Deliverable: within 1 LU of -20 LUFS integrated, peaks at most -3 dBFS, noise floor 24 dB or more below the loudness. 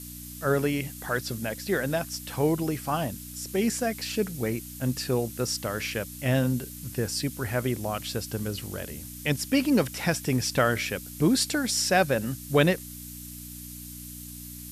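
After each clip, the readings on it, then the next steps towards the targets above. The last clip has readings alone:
hum 60 Hz; highest harmonic 300 Hz; hum level -42 dBFS; noise floor -41 dBFS; noise floor target -52 dBFS; loudness -27.5 LUFS; peak level -9.5 dBFS; loudness target -20.0 LUFS
-> de-hum 60 Hz, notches 5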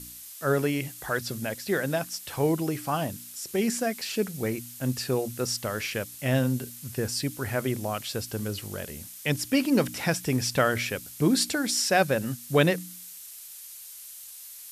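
hum not found; noise floor -44 dBFS; noise floor target -52 dBFS
-> noise print and reduce 8 dB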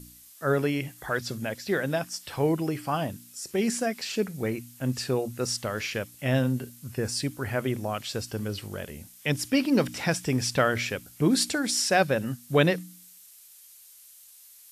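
noise floor -52 dBFS; loudness -28.0 LUFS; peak level -10.0 dBFS; loudness target -20.0 LUFS
-> trim +8 dB; peak limiter -3 dBFS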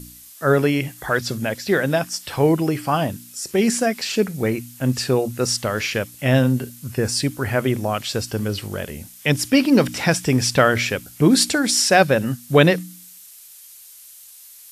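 loudness -20.0 LUFS; peak level -3.0 dBFS; noise floor -44 dBFS

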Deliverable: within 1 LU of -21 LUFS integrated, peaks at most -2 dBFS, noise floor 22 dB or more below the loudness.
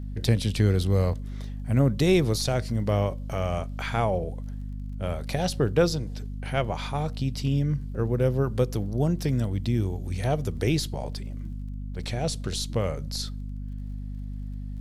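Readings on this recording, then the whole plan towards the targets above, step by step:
tick rate 22 per s; hum 50 Hz; highest harmonic 250 Hz; hum level -32 dBFS; loudness -27.5 LUFS; peak level -9.0 dBFS; loudness target -21.0 LUFS
-> de-click; de-hum 50 Hz, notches 5; trim +6.5 dB

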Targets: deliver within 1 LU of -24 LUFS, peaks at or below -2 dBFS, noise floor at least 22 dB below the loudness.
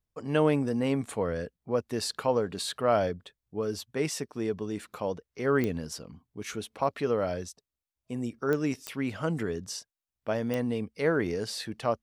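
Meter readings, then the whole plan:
clicks found 4; loudness -30.5 LUFS; peak level -12.0 dBFS; loudness target -24.0 LUFS
-> de-click; trim +6.5 dB

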